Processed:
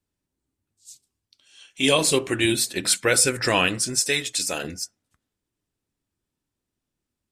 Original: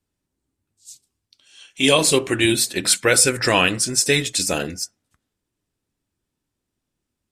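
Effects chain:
0:03.99–0:04.64: low-shelf EQ 340 Hz −10.5 dB
level −3.5 dB

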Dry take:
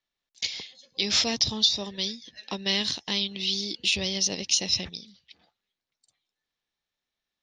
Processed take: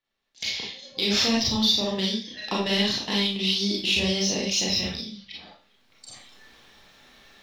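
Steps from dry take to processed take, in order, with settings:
camcorder AGC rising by 19 dB per second
high-shelf EQ 5,500 Hz −11.5 dB
in parallel at −5 dB: soft clipping −25 dBFS, distortion −11 dB
on the sum: four-comb reverb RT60 0.39 s, combs from 28 ms, DRR −4 dB
level −3.5 dB

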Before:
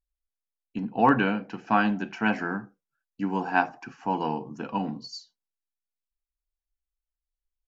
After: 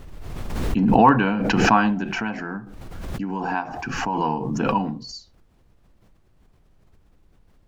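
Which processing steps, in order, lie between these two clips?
low-shelf EQ 120 Hz +11 dB
background noise brown −59 dBFS
0:02.08–0:04.19: downward compressor 2.5 to 1, threshold −29 dBFS, peak gain reduction 9.5 dB
dynamic equaliser 1,000 Hz, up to +7 dB, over −40 dBFS, Q 3.6
background raised ahead of every attack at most 27 dB per second
level +1.5 dB

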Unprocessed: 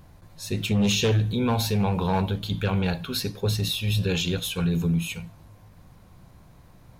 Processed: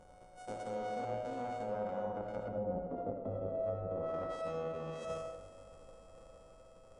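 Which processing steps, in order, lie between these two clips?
samples sorted by size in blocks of 64 samples
source passing by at 0:03.05, 21 m/s, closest 6 metres
treble cut that deepens with the level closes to 490 Hz, closed at −28.5 dBFS
octave-band graphic EQ 125/250/500/1,000/2,000/4,000/8,000 Hz −8/+5/+4/+7/−3/−6/+4 dB
reversed playback
downward compressor 5 to 1, threshold −53 dBFS, peak gain reduction 25.5 dB
reversed playback
linear-phase brick-wall low-pass 11,000 Hz
hollow resonant body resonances 520/3,300 Hz, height 11 dB, ringing for 45 ms
on a send: convolution reverb RT60 0.55 s, pre-delay 35 ms, DRR 2.5 dB
on the sum: level +9.5 dB

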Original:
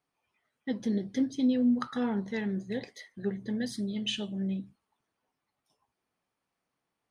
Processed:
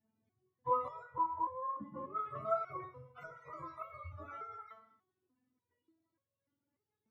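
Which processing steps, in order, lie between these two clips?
frequency axis turned over on the octave scale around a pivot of 510 Hz
0:01.03–0:02.16: low-pass filter 1,200 Hz 12 dB per octave
downward compressor, threshold −35 dBFS, peak gain reduction 10.5 dB
reverb whose tail is shaped and stops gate 360 ms falling, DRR 11.5 dB
step-sequenced resonator 3.4 Hz 220–550 Hz
level +16.5 dB

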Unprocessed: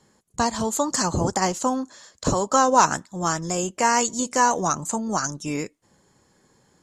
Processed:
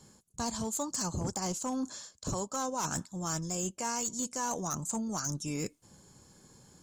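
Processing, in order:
bass and treble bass +7 dB, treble +8 dB
notch filter 1,900 Hz, Q 7.8
reversed playback
downward compressor 5 to 1, threshold −31 dBFS, peak gain reduction 18.5 dB
reversed playback
hard clipping −25.5 dBFS, distortion −19 dB
level −1.5 dB

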